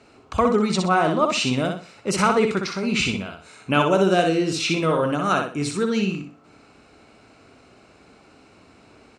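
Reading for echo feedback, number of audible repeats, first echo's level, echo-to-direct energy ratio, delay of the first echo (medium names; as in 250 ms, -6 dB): 29%, 3, -5.0 dB, -4.5 dB, 62 ms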